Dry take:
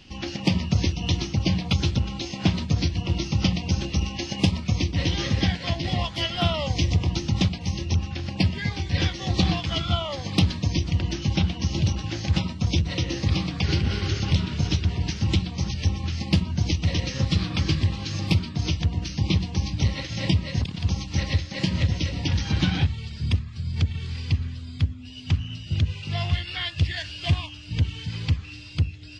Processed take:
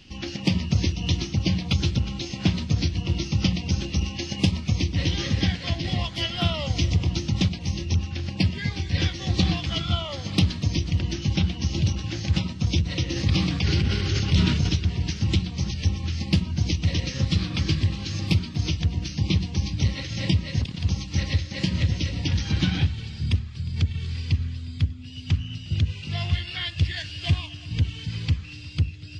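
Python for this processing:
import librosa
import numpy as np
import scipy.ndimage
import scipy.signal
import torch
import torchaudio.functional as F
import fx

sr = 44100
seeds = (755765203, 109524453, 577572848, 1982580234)

y = fx.peak_eq(x, sr, hz=820.0, db=-5.0, octaves=1.5)
y = fx.echo_heads(y, sr, ms=119, heads='second and third', feedback_pct=45, wet_db=-21)
y = fx.sustainer(y, sr, db_per_s=32.0, at=(13.15, 14.68), fade=0.02)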